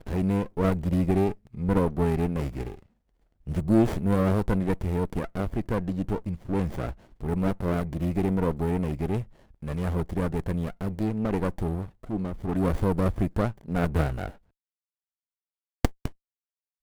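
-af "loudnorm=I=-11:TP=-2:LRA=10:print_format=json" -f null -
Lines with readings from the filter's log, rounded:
"input_i" : "-28.0",
"input_tp" : "-5.3",
"input_lra" : "7.1",
"input_thresh" : "-38.4",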